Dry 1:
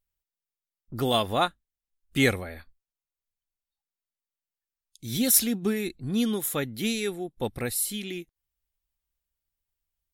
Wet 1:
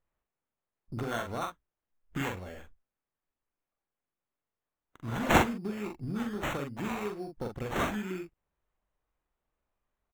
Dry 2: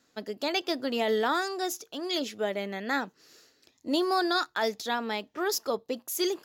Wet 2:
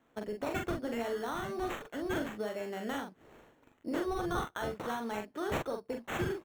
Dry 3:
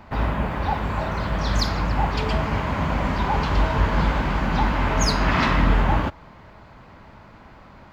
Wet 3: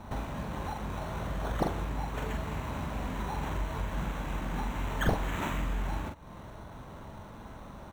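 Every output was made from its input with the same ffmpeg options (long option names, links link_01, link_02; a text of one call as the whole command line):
ffmpeg -i in.wav -filter_complex "[0:a]acrossover=split=3200[link_01][link_02];[link_01]acompressor=threshold=-34dB:ratio=5[link_03];[link_03][link_02]amix=inputs=2:normalize=0,acrusher=samples=9:mix=1:aa=0.000001,highshelf=frequency=2200:gain=-11.5,asplit=2[link_04][link_05];[link_05]adelay=43,volume=-4.5dB[link_06];[link_04][link_06]amix=inputs=2:normalize=0" out.wav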